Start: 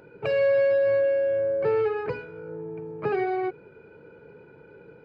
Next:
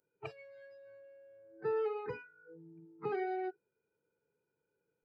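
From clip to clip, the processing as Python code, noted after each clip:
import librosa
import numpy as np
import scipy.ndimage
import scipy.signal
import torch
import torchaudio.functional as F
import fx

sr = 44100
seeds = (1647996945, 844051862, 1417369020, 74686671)

y = fx.low_shelf(x, sr, hz=400.0, db=-3.5)
y = fx.noise_reduce_blind(y, sr, reduce_db=25)
y = F.gain(torch.from_numpy(y), -8.5).numpy()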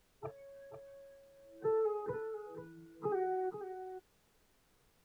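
y = scipy.signal.sosfilt(scipy.signal.butter(4, 1400.0, 'lowpass', fs=sr, output='sos'), x)
y = fx.dmg_noise_colour(y, sr, seeds[0], colour='pink', level_db=-73.0)
y = y + 10.0 ** (-10.0 / 20.0) * np.pad(y, (int(488 * sr / 1000.0), 0))[:len(y)]
y = F.gain(torch.from_numpy(y), 1.0).numpy()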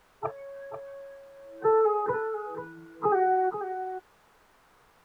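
y = fx.peak_eq(x, sr, hz=1100.0, db=14.0, octaves=2.2)
y = F.gain(torch.from_numpy(y), 4.0).numpy()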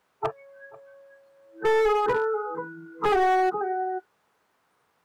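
y = scipy.signal.sosfilt(scipy.signal.butter(2, 110.0, 'highpass', fs=sr, output='sos'), x)
y = fx.noise_reduce_blind(y, sr, reduce_db=14)
y = np.clip(y, -10.0 ** (-24.5 / 20.0), 10.0 ** (-24.5 / 20.0))
y = F.gain(torch.from_numpy(y), 6.0).numpy()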